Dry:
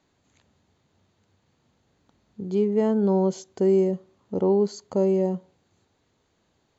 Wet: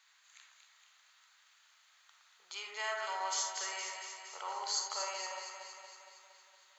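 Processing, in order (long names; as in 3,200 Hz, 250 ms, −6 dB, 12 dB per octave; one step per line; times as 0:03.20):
inverse Chebyshev high-pass filter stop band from 280 Hz, stop band 70 dB
delay that swaps between a low-pass and a high-pass 116 ms, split 2,000 Hz, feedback 78%, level −3.5 dB
on a send at −3.5 dB: convolution reverb RT60 0.35 s, pre-delay 15 ms
on the sum: level +6.5 dB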